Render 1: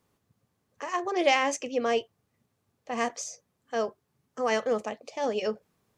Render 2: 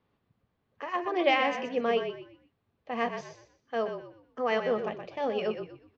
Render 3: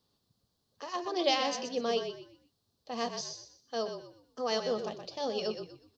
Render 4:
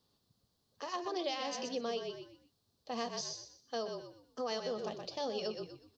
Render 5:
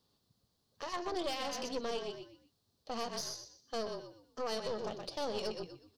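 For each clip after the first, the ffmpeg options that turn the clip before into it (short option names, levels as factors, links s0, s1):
-filter_complex "[0:a]lowpass=f=3800:w=0.5412,lowpass=f=3800:w=1.3066,asplit=5[s0][s1][s2][s3][s4];[s1]adelay=123,afreqshift=-41,volume=0.398[s5];[s2]adelay=246,afreqshift=-82,volume=0.123[s6];[s3]adelay=369,afreqshift=-123,volume=0.0385[s7];[s4]adelay=492,afreqshift=-164,volume=0.0119[s8];[s0][s5][s6][s7][s8]amix=inputs=5:normalize=0,volume=0.841"
-af "highshelf=f=3200:t=q:w=3:g=13,volume=0.668"
-af "acompressor=threshold=0.02:ratio=6"
-af "aeval=exprs='(tanh(50.1*val(0)+0.7)-tanh(0.7))/50.1':c=same,volume=1.58"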